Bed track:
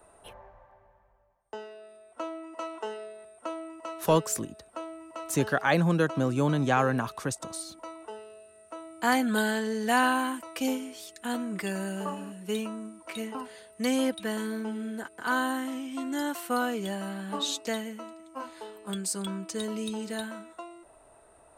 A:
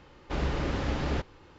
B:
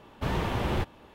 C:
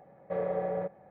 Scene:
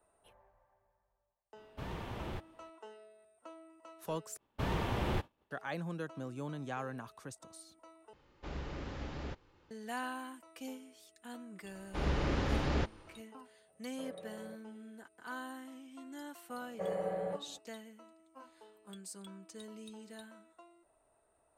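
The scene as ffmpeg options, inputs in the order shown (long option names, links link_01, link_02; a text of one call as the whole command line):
ffmpeg -i bed.wav -i cue0.wav -i cue1.wav -i cue2.wav -filter_complex "[2:a]asplit=2[link_01][link_02];[1:a]asplit=2[link_03][link_04];[3:a]asplit=2[link_05][link_06];[0:a]volume=-16dB[link_07];[link_02]agate=range=-33dB:threshold=-41dB:ratio=3:release=100:detection=peak[link_08];[link_04]dynaudnorm=framelen=230:gausssize=3:maxgain=7dB[link_09];[link_05]equalizer=frequency=870:width_type=o:width=0.41:gain=-6[link_10];[link_06]equalizer=frequency=120:width_type=o:width=0.39:gain=-8[link_11];[link_07]asplit=3[link_12][link_13][link_14];[link_12]atrim=end=4.374[link_15];[link_08]atrim=end=1.14,asetpts=PTS-STARTPTS,volume=-5.5dB[link_16];[link_13]atrim=start=5.506:end=8.134[link_17];[link_03]atrim=end=1.58,asetpts=PTS-STARTPTS,volume=-12.5dB[link_18];[link_14]atrim=start=9.706[link_19];[link_01]atrim=end=1.14,asetpts=PTS-STARTPTS,volume=-13.5dB,afade=type=in:duration=0.004:curve=hsin,afade=type=out:start_time=1.136:duration=0.004:curve=hsin,adelay=1560[link_20];[link_09]atrim=end=1.58,asetpts=PTS-STARTPTS,volume=-9.5dB,afade=type=in:duration=0.004:curve=hsin,afade=type=out:start_time=1.576:duration=0.004:curve=hsin,adelay=11640[link_21];[link_10]atrim=end=1.1,asetpts=PTS-STARTPTS,volume=-17dB,afade=type=in:duration=0.004:curve=hsin,afade=type=out:start_time=1.096:duration=0.004:curve=hsin,adelay=13680[link_22];[link_11]atrim=end=1.1,asetpts=PTS-STARTPTS,volume=-5dB,afade=type=in:duration=0.004:curve=hsin,afade=type=out:start_time=1.096:duration=0.004:curve=hsin,adelay=16490[link_23];[link_15][link_16]acrossfade=duration=0.004:curve1=hsin:curve2=hsin[link_24];[link_24][link_17]acrossfade=duration=0.004:curve1=hsin:curve2=hsin[link_25];[link_25][link_18]acrossfade=duration=0.004:curve1=hsin:curve2=hsin[link_26];[link_26][link_19]acrossfade=duration=0.004:curve1=hsin:curve2=hsin[link_27];[link_27][link_20][link_21][link_22][link_23]amix=inputs=5:normalize=0" out.wav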